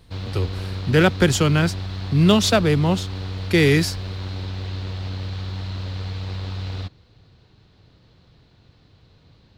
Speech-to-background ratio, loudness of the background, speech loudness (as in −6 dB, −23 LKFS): 11.5 dB, −30.5 LKFS, −19.0 LKFS